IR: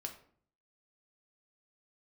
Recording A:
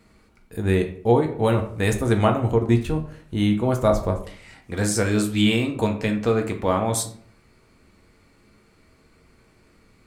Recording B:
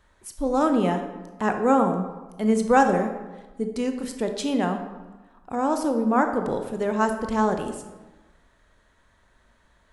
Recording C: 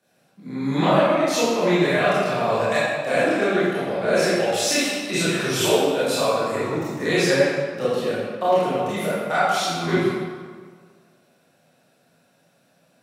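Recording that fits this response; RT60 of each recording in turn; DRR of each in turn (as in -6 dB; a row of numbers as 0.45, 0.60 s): A; 0.55, 1.2, 1.7 s; 3.0, 6.0, -11.0 dB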